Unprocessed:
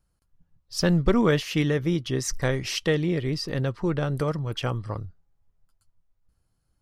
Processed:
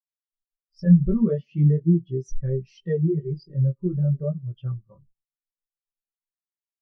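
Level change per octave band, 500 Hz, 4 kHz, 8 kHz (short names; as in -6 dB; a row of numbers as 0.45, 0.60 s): -3.0 dB, under -20 dB, under -20 dB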